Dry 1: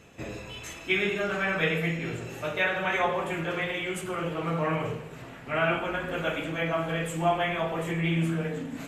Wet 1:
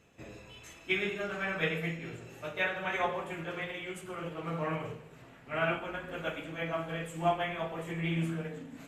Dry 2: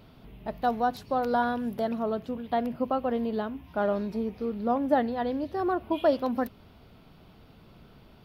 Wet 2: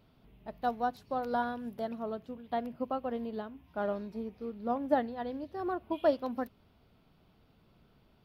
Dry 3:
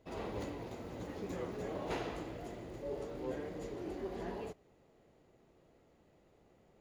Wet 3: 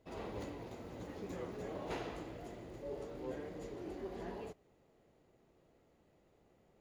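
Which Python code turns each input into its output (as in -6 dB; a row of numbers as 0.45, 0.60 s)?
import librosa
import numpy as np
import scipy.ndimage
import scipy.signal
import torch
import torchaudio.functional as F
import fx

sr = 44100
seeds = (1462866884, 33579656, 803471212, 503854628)

y = fx.upward_expand(x, sr, threshold_db=-35.0, expansion=1.5)
y = y * librosa.db_to_amplitude(-3.0)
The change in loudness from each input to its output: -6.0, -6.5, -3.0 LU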